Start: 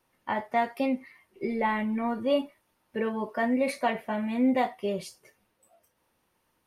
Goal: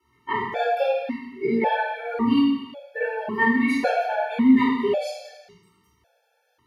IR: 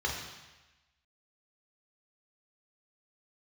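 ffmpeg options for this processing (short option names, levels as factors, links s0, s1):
-filter_complex "[0:a]flanger=delay=16.5:depth=5.7:speed=1[s0];[1:a]atrim=start_sample=2205[s1];[s0][s1]afir=irnorm=-1:irlink=0,afftfilt=real='re*gt(sin(2*PI*0.91*pts/sr)*(1-2*mod(floor(b*sr/1024/450),2)),0)':imag='im*gt(sin(2*PI*0.91*pts/sr)*(1-2*mod(floor(b*sr/1024/450),2)),0)':win_size=1024:overlap=0.75,volume=2"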